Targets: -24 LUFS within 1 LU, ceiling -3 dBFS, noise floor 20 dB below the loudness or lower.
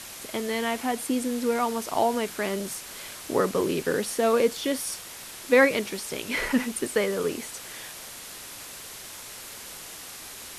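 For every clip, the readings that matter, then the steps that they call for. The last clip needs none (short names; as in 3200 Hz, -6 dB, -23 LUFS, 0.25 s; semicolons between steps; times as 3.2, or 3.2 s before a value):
noise floor -42 dBFS; noise floor target -47 dBFS; loudness -26.5 LUFS; peak -7.5 dBFS; loudness target -24.0 LUFS
-> denoiser 6 dB, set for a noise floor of -42 dBFS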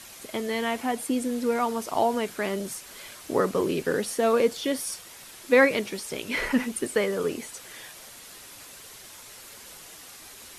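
noise floor -46 dBFS; noise floor target -47 dBFS
-> denoiser 6 dB, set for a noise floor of -46 dBFS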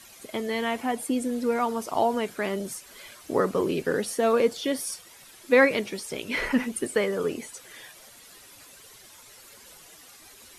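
noise floor -51 dBFS; loudness -26.5 LUFS; peak -7.5 dBFS; loudness target -24.0 LUFS
-> gain +2.5 dB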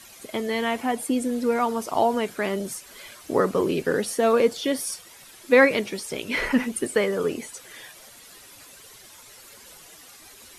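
loudness -24.0 LUFS; peak -5.0 dBFS; noise floor -48 dBFS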